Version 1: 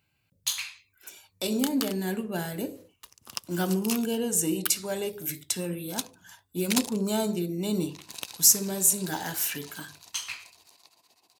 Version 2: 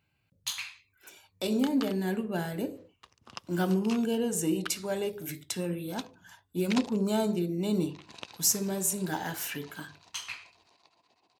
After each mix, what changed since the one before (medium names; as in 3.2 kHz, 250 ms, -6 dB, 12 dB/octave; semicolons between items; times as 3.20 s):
first sound: add distance through air 99 m; master: add treble shelf 4.4 kHz -9.5 dB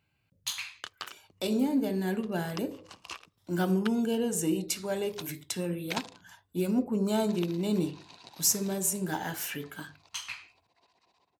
first sound: entry -0.80 s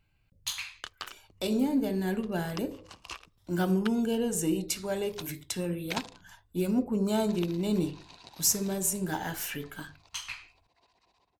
master: remove high-pass 110 Hz 12 dB/octave